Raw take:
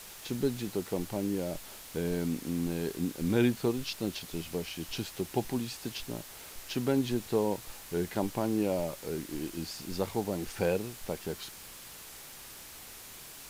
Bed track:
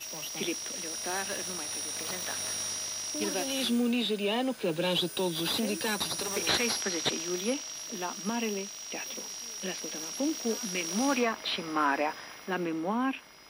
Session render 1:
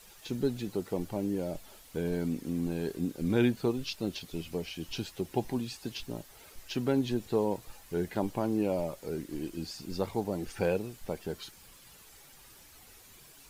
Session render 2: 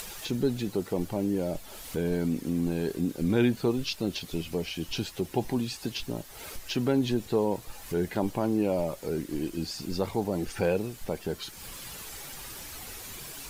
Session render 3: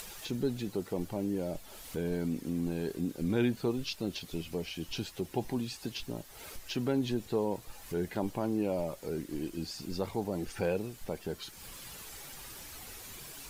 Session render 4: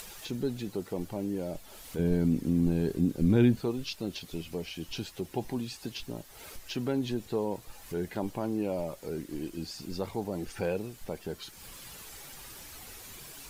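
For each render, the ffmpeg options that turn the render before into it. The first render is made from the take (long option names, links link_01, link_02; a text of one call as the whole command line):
ffmpeg -i in.wav -af "afftdn=noise_reduction=10:noise_floor=-48" out.wav
ffmpeg -i in.wav -filter_complex "[0:a]asplit=2[link_01][link_02];[link_02]alimiter=level_in=2.5dB:limit=-24dB:level=0:latency=1:release=23,volume=-2.5dB,volume=-1.5dB[link_03];[link_01][link_03]amix=inputs=2:normalize=0,acompressor=mode=upward:threshold=-32dB:ratio=2.5" out.wav
ffmpeg -i in.wav -af "volume=-5dB" out.wav
ffmpeg -i in.wav -filter_complex "[0:a]asettb=1/sr,asplit=3[link_01][link_02][link_03];[link_01]atrim=end=1.994[link_04];[link_02]atrim=start=1.99:end=3.6,asetpts=PTS-STARTPTS,afade=type=in:duration=0.004:curve=qsin,afade=type=out:start_time=1.606:duration=0.004:curve=qsin,lowshelf=frequency=290:gain=11.5[link_05];[link_03]atrim=start=3.596[link_06];[link_04][link_05]acrossfade=duration=0.004:curve1=hsin:curve2=qsin[link_07];[link_07][link_06]acrossfade=duration=0.004:curve1=qsin:curve2=hsin" out.wav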